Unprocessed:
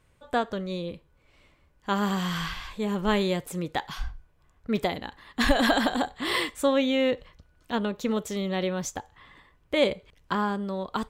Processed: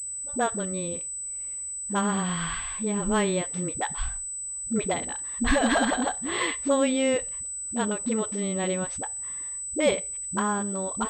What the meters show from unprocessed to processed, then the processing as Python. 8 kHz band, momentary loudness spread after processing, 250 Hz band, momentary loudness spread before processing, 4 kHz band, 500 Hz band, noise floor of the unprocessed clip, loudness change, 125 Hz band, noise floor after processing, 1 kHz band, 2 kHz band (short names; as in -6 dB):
+16.5 dB, 8 LU, 0.0 dB, 14 LU, -3.5 dB, 0.0 dB, -64 dBFS, +0.5 dB, 0.0 dB, -35 dBFS, 0.0 dB, -0.5 dB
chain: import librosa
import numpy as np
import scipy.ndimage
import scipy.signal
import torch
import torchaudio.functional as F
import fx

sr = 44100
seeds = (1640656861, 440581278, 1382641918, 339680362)

y = fx.dispersion(x, sr, late='highs', ms=69.0, hz=320.0)
y = fx.pwm(y, sr, carrier_hz=8000.0)